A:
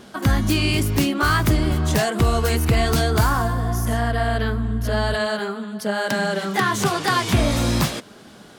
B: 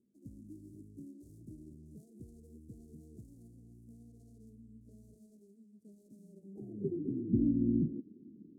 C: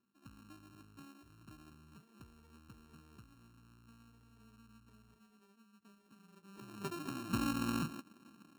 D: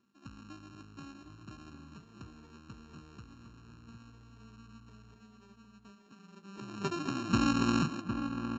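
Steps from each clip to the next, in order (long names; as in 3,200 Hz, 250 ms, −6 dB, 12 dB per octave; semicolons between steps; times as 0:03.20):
running median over 41 samples; inverse Chebyshev band-stop filter 1,100–2,600 Hz, stop band 80 dB; band-pass filter sweep 2,200 Hz → 310 Hz, 0:06.23–0:06.98
samples sorted by size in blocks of 32 samples; level −6.5 dB
slap from a distant wall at 130 metres, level −7 dB; downsampling to 16,000 Hz; level +7.5 dB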